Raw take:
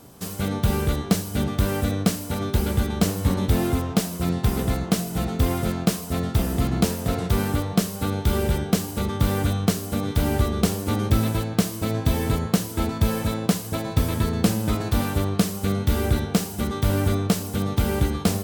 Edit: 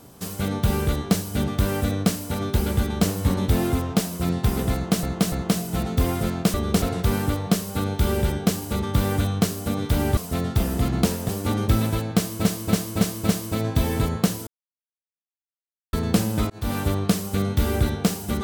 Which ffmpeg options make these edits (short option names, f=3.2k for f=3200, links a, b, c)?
-filter_complex "[0:a]asplit=14[a][b][c][d][e][f][g][h][i][j][k][l][m][n];[a]atrim=end=5.032[o];[b]atrim=start=4.738:end=5.032[p];[c]atrim=start=4.738:end=5.962[q];[d]atrim=start=10.428:end=10.712[r];[e]atrim=start=7.078:end=10.432[s];[f]atrim=start=5.958:end=7.082[t];[g]atrim=start=10.708:end=11.872[u];[h]atrim=start=11.588:end=11.872[v];[i]atrim=start=11.588:end=11.872[w];[j]atrim=start=11.588:end=11.872[x];[k]atrim=start=11.588:end=12.77,asetpts=PTS-STARTPTS,afade=t=out:st=1.178:d=0.004:c=hsin[y];[l]atrim=start=12.77:end=14.23,asetpts=PTS-STARTPTS,volume=0[z];[m]atrim=start=14.23:end=14.8,asetpts=PTS-STARTPTS,afade=t=in:d=0.004:c=hsin,afade=t=out:st=0.566:d=0.004:c=hsin[aa];[n]atrim=start=14.8,asetpts=PTS-STARTPTS,afade=t=in:d=0.28[ab];[o][p]acrossfade=d=0.004:c1=hsin:c2=hsin[ac];[ac][q]acrossfade=d=0.004:c1=hsin:c2=hsin[ad];[ad][r]acrossfade=d=0.004:c1=hsin:c2=hsin[ae];[ae][s]acrossfade=d=0.004:c1=hsin:c2=hsin[af];[af][t]acrossfade=d=0.004:c1=hsin:c2=hsin[ag];[ag][u]acrossfade=d=0.004:c1=hsin:c2=hsin[ah];[ah][v]acrossfade=d=0.004:c1=hsin:c2=hsin[ai];[ai][w]acrossfade=d=0.004:c1=hsin:c2=hsin[aj];[aj][x]acrossfade=d=0.004:c1=hsin:c2=hsin[ak];[y][z][aa][ab]concat=n=4:v=0:a=1[al];[ak][al]acrossfade=d=0.004:c1=hsin:c2=hsin"